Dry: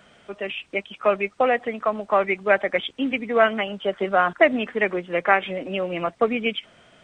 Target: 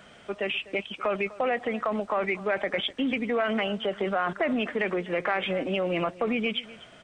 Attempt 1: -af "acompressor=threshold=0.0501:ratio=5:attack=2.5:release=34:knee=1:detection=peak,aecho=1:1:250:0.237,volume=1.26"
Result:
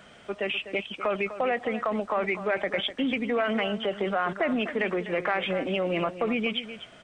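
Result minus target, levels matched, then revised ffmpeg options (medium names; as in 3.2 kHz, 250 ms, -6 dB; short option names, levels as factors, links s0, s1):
echo-to-direct +6.5 dB
-af "acompressor=threshold=0.0501:ratio=5:attack=2.5:release=34:knee=1:detection=peak,aecho=1:1:250:0.112,volume=1.26"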